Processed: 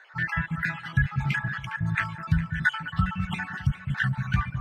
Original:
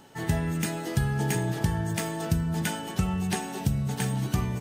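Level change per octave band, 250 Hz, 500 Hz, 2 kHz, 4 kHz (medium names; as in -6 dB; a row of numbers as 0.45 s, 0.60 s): -3.5 dB, -19.5 dB, +10.0 dB, -2.5 dB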